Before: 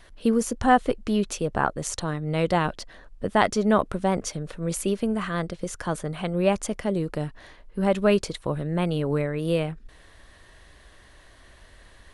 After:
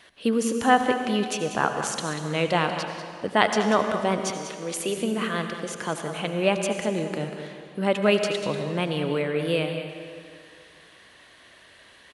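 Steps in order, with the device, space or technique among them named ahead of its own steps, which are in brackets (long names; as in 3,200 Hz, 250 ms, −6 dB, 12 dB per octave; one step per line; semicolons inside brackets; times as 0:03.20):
PA in a hall (high-pass filter 170 Hz 12 dB per octave; parametric band 2,800 Hz +7 dB 1.2 octaves; single-tap delay 191 ms −11 dB; convolution reverb RT60 2.3 s, pre-delay 71 ms, DRR 6.5 dB)
0:04.30–0:04.97: high-pass filter 250 Hz 12 dB per octave
level −1 dB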